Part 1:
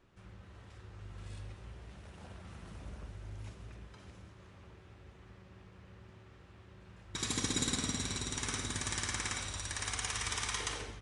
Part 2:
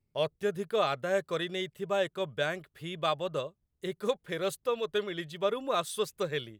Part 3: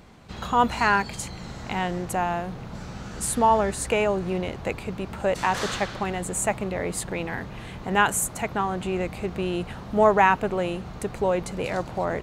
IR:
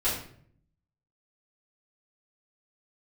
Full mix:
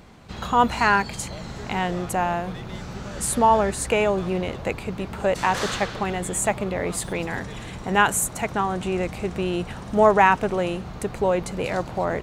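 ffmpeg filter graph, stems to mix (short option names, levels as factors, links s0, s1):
-filter_complex "[0:a]volume=0.178[s0];[1:a]acompressor=threshold=0.0224:ratio=6,asplit=2[s1][s2];[s2]highpass=f=720:p=1,volume=7.94,asoftclip=type=tanh:threshold=0.0473[s3];[s1][s3]amix=inputs=2:normalize=0,lowpass=f=3500:p=1,volume=0.501,adelay=1150,volume=0.398[s4];[2:a]volume=1.26[s5];[s0][s4][s5]amix=inputs=3:normalize=0"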